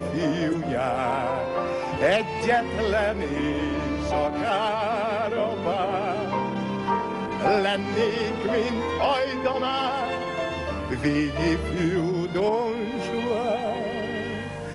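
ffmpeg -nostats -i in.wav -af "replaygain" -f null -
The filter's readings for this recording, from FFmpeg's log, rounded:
track_gain = +6.3 dB
track_peak = 0.210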